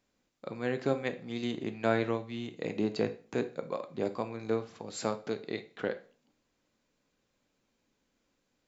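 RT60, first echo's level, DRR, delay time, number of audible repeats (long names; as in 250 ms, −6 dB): 0.45 s, no echo audible, 9.0 dB, no echo audible, no echo audible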